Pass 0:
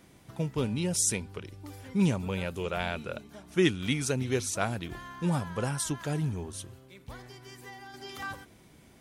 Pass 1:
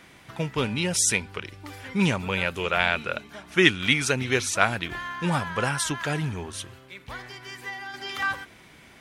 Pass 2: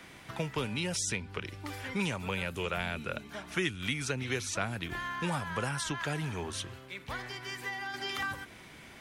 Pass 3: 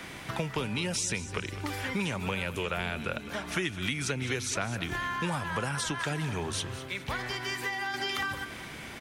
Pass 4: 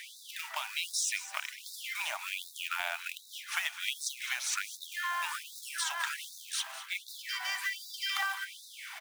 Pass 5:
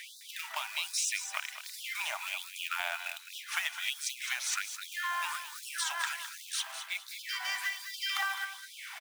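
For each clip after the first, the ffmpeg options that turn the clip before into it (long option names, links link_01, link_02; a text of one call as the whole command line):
ffmpeg -i in.wav -af "equalizer=frequency=2000:width=0.47:gain=12.5,volume=1dB" out.wav
ffmpeg -i in.wav -filter_complex "[0:a]acrossover=split=120|350|7300[link_01][link_02][link_03][link_04];[link_01]acompressor=threshold=-43dB:ratio=4[link_05];[link_02]acompressor=threshold=-40dB:ratio=4[link_06];[link_03]acompressor=threshold=-34dB:ratio=4[link_07];[link_04]acompressor=threshold=-49dB:ratio=4[link_08];[link_05][link_06][link_07][link_08]amix=inputs=4:normalize=0" out.wav
ffmpeg -i in.wav -af "acompressor=threshold=-40dB:ratio=2.5,aecho=1:1:208|416|624|832:0.2|0.0798|0.0319|0.0128,volume=8.5dB" out.wav
ffmpeg -i in.wav -af "acrusher=bits=3:mode=log:mix=0:aa=0.000001,afftfilt=real='re*gte(b*sr/1024,580*pow(3600/580,0.5+0.5*sin(2*PI*1.3*pts/sr)))':imag='im*gte(b*sr/1024,580*pow(3600/580,0.5+0.5*sin(2*PI*1.3*pts/sr)))':win_size=1024:overlap=0.75" out.wav
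ffmpeg -i in.wav -af "aecho=1:1:210:0.282" out.wav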